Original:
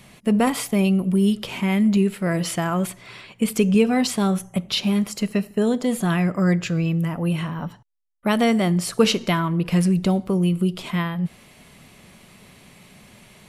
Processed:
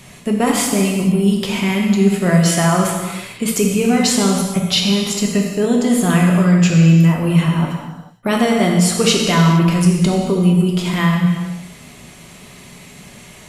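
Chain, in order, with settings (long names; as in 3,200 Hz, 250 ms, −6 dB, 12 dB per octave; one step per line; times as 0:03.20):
in parallel at −1.5 dB: compressor whose output falls as the input rises −21 dBFS, ratio −0.5
on the sum: parametric band 6,900 Hz +6 dB 0.53 octaves
reverb whose tail is shaped and stops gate 490 ms falling, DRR −0.5 dB
level −1.5 dB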